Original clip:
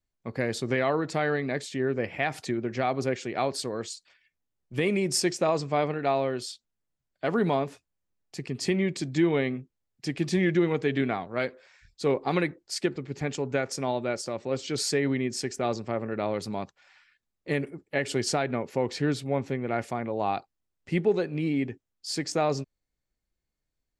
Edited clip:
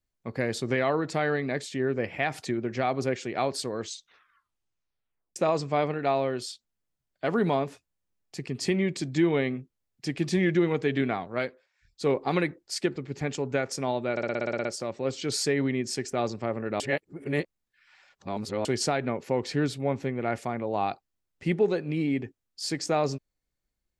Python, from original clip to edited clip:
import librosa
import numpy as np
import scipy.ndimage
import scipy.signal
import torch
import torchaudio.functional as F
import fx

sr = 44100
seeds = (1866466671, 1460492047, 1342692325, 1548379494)

y = fx.edit(x, sr, fx.tape_stop(start_s=3.79, length_s=1.57),
    fx.fade_down_up(start_s=11.38, length_s=0.66, db=-18.0, fade_s=0.29),
    fx.stutter(start_s=14.11, slice_s=0.06, count=10),
    fx.reverse_span(start_s=16.26, length_s=1.85), tone=tone)